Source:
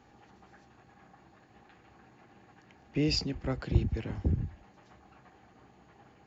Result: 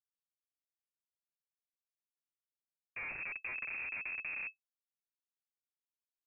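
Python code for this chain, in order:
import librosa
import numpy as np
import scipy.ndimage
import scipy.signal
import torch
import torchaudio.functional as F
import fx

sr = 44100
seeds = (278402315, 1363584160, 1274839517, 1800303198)

y = fx.schmitt(x, sr, flips_db=-35.0)
y = fx.freq_invert(y, sr, carrier_hz=2600)
y = y * 10.0 ** (-5.0 / 20.0)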